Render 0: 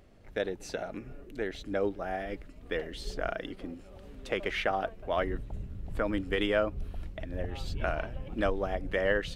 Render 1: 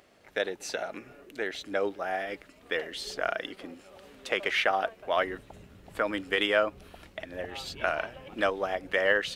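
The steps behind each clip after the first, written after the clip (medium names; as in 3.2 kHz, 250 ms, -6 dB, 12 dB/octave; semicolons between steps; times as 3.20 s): high-pass 850 Hz 6 dB/octave; trim +7 dB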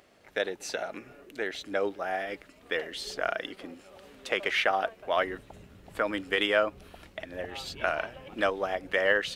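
no audible change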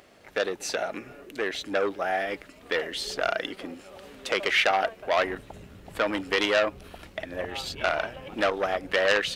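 transformer saturation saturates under 2.7 kHz; trim +5.5 dB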